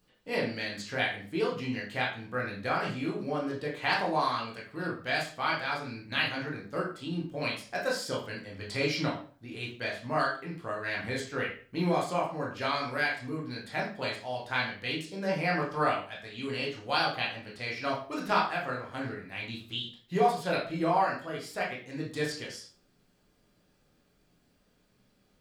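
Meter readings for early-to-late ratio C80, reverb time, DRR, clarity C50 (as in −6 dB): 11.0 dB, 0.40 s, −4.5 dB, 6.0 dB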